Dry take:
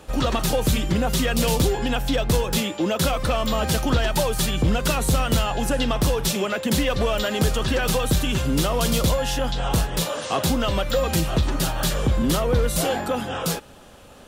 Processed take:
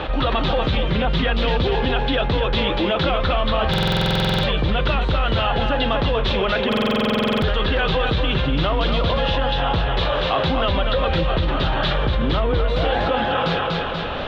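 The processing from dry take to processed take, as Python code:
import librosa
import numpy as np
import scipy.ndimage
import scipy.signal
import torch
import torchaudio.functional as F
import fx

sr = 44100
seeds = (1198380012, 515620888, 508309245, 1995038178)

y = scipy.signal.sosfilt(scipy.signal.cheby1(4, 1.0, 3700.0, 'lowpass', fs=sr, output='sos'), x)
y = fx.peak_eq(y, sr, hz=220.0, db=-5.0, octaves=1.2)
y = fx.hum_notches(y, sr, base_hz=60, count=9)
y = fx.echo_feedback(y, sr, ms=242, feedback_pct=28, wet_db=-6)
y = fx.buffer_glitch(y, sr, at_s=(3.69, 6.68), block=2048, repeats=15)
y = fx.env_flatten(y, sr, amount_pct=70)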